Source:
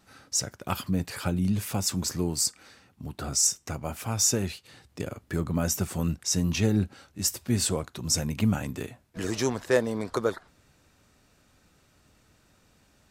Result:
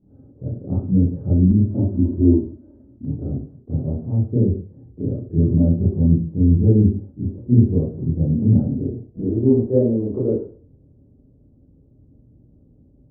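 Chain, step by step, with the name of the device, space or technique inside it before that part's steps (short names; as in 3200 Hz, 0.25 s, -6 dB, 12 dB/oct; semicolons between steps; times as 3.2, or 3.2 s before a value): next room (LPF 410 Hz 24 dB/oct; reverb RT60 0.40 s, pre-delay 21 ms, DRR -8.5 dB); 1.51–3.05 comb 3.2 ms, depth 98%; gain +3 dB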